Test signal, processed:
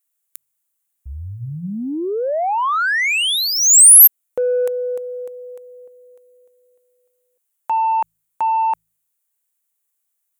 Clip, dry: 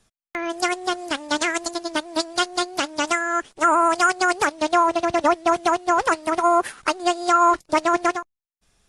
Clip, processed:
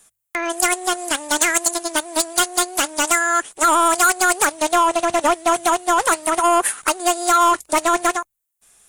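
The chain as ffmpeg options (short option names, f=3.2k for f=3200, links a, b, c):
-filter_complex "[0:a]bandreject=f=53.99:t=h:w=4,bandreject=f=107.98:t=h:w=4,bandreject=f=161.97:t=h:w=4,asplit=2[a][b];[b]highpass=f=720:p=1,volume=14dB,asoftclip=type=tanh:threshold=-6.5dB[c];[a][c]amix=inputs=2:normalize=0,lowpass=f=5.3k:p=1,volume=-6dB,aexciter=amount=9.2:drive=2.3:freq=7.1k,volume=-1.5dB"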